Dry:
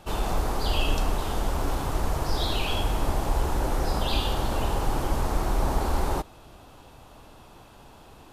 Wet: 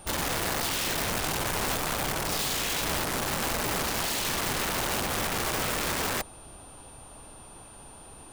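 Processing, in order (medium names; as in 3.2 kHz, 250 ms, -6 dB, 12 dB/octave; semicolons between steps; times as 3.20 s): integer overflow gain 24.5 dB; whistle 9.1 kHz -49 dBFS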